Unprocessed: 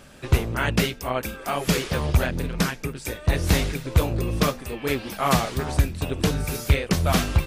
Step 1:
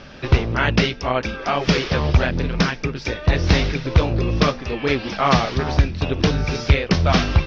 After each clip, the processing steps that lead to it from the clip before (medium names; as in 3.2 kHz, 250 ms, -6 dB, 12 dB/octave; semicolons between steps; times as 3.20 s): elliptic low-pass 5.6 kHz, stop band 40 dB; in parallel at -2 dB: compression, threshold -30 dBFS, peak gain reduction 16 dB; on the sum: trim +3.5 dB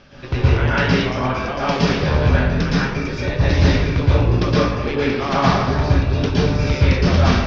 plate-style reverb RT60 1.1 s, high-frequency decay 0.5×, pre-delay 105 ms, DRR -8.5 dB; trim -8 dB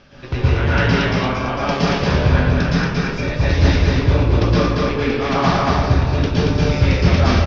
delay 230 ms -3 dB; trim -1 dB